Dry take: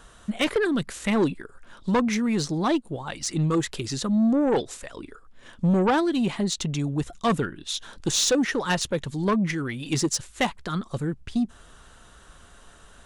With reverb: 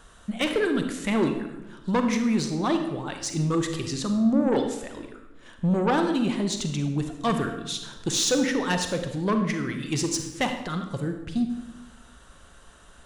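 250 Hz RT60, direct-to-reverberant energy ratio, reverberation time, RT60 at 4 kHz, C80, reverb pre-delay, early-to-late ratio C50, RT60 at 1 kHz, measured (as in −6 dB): 1.3 s, 5.5 dB, 1.1 s, 0.75 s, 9.0 dB, 35 ms, 7.0 dB, 0.95 s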